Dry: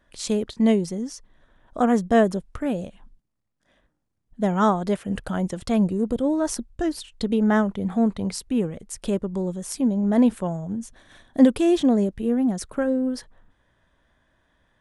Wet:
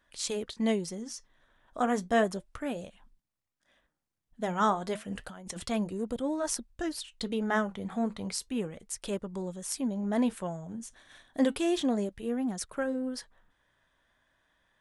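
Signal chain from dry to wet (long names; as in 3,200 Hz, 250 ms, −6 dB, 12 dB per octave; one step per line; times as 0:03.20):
tilt shelving filter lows −5 dB, about 640 Hz
0:05.14–0:05.65: compressor whose output falls as the input rises −36 dBFS, ratio −1
flanger 0.32 Hz, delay 0.7 ms, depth 7.9 ms, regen −75%
level −2.5 dB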